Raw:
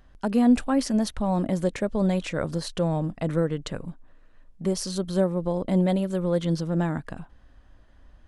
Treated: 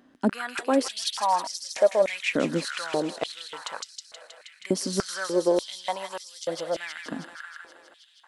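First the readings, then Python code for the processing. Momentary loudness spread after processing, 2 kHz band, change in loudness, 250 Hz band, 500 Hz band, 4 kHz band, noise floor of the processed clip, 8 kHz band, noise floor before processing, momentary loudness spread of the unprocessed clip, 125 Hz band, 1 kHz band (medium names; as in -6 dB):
17 LU, +6.5 dB, -2.0 dB, -7.5 dB, +1.0 dB, +6.0 dB, -58 dBFS, +4.0 dB, -54 dBFS, 10 LU, -14.0 dB, +4.5 dB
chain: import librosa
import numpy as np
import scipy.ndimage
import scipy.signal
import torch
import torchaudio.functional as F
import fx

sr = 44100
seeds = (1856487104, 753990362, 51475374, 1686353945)

y = fx.echo_wet_highpass(x, sr, ms=159, feedback_pct=75, hz=1700.0, wet_db=-3.5)
y = fx.filter_held_highpass(y, sr, hz=3.4, low_hz=260.0, high_hz=5200.0)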